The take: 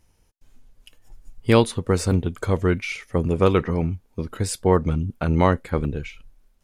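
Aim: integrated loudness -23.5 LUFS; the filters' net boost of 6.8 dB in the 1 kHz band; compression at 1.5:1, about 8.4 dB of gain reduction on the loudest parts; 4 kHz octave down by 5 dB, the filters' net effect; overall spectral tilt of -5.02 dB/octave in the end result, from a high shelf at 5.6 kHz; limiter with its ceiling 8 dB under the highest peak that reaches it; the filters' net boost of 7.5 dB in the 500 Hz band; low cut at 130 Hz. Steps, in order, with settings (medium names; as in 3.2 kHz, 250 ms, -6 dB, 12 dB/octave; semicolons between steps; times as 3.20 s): high-pass 130 Hz; peaking EQ 500 Hz +7.5 dB; peaking EQ 1 kHz +6.5 dB; peaking EQ 4 kHz -5.5 dB; treble shelf 5.6 kHz -4.5 dB; compression 1.5:1, threshold -29 dBFS; trim +5 dB; peak limiter -8 dBFS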